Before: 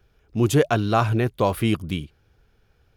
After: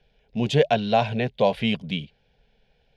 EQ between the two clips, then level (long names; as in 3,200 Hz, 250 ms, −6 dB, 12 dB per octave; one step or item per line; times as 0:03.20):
low-pass with resonance 3,600 Hz, resonance Q 1.5
parametric band 1,200 Hz +4.5 dB 2.7 octaves
phaser with its sweep stopped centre 330 Hz, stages 6
0.0 dB